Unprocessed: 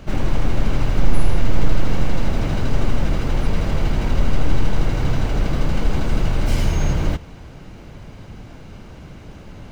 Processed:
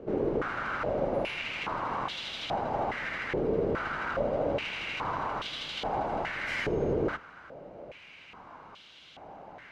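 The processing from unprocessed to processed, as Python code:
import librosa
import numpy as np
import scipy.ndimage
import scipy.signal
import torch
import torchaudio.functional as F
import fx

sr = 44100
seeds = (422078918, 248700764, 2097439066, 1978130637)

y = fx.octave_divider(x, sr, octaves=2, level_db=0.0)
y = fx.filter_held_bandpass(y, sr, hz=2.4, low_hz=430.0, high_hz=3400.0)
y = y * 10.0 ** (7.5 / 20.0)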